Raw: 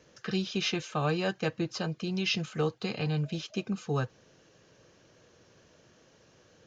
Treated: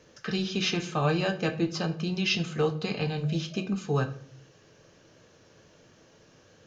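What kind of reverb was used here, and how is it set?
simulated room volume 59 m³, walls mixed, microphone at 0.3 m; trim +2 dB

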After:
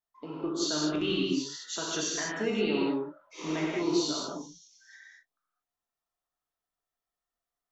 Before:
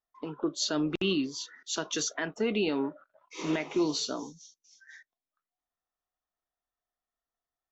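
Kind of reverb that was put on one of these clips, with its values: gated-style reverb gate 240 ms flat, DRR -4.5 dB; trim -5 dB

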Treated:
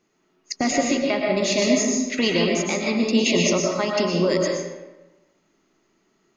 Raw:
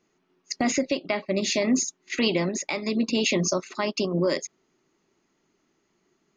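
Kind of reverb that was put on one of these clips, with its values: algorithmic reverb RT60 1.1 s, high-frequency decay 0.7×, pre-delay 80 ms, DRR -0.5 dB; trim +1.5 dB

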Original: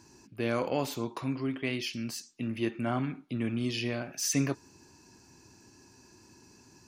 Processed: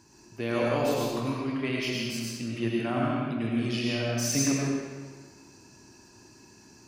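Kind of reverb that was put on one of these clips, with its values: algorithmic reverb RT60 1.5 s, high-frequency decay 0.85×, pre-delay 60 ms, DRR -4 dB; trim -1 dB

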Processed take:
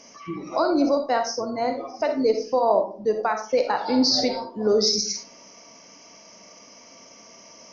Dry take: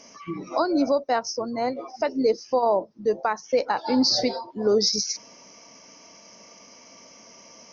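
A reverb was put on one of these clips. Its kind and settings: algorithmic reverb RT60 0.44 s, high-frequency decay 0.45×, pre-delay 10 ms, DRR 5 dB

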